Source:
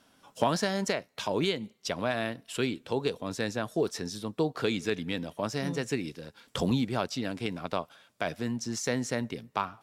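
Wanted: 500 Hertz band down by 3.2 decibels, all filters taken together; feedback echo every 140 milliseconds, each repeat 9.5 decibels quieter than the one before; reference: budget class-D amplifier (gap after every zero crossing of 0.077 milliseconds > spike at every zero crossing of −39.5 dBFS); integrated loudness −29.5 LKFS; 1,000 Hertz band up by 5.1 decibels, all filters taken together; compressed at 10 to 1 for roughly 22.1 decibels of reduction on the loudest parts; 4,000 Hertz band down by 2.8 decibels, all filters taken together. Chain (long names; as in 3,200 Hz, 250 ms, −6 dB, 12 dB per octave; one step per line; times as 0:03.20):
parametric band 500 Hz −6.5 dB
parametric band 1,000 Hz +8.5 dB
parametric band 4,000 Hz −4 dB
downward compressor 10 to 1, threshold −42 dBFS
repeating echo 140 ms, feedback 33%, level −9.5 dB
gap after every zero crossing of 0.077 ms
spike at every zero crossing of −39.5 dBFS
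level +16 dB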